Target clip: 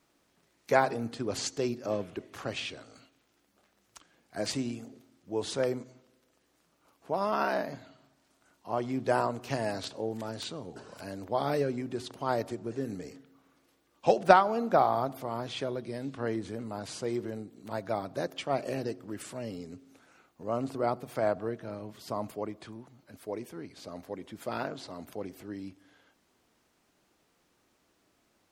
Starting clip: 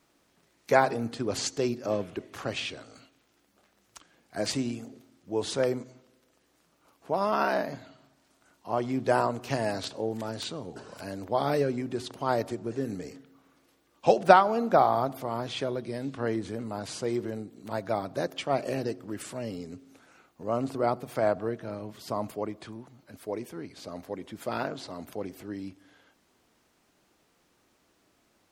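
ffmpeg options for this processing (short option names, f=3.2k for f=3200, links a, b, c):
-af "aeval=exprs='0.891*(cos(1*acos(clip(val(0)/0.891,-1,1)))-cos(1*PI/2))+0.0562*(cos(3*acos(clip(val(0)/0.891,-1,1)))-cos(3*PI/2))':c=same,volume=-1dB"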